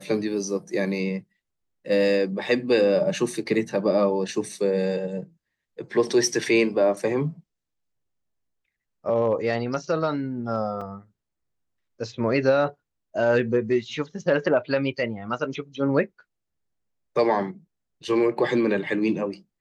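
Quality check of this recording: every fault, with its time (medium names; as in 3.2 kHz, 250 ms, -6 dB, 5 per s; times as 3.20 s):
10.81 s: dropout 4.1 ms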